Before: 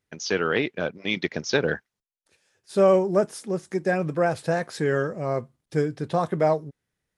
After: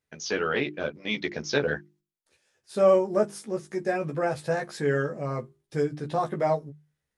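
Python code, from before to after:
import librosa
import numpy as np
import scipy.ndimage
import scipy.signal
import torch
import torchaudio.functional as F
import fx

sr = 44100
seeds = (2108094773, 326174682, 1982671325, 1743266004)

y = fx.hum_notches(x, sr, base_hz=50, count=8)
y = fx.doubler(y, sr, ms=14.0, db=-3)
y = F.gain(torch.from_numpy(y), -4.5).numpy()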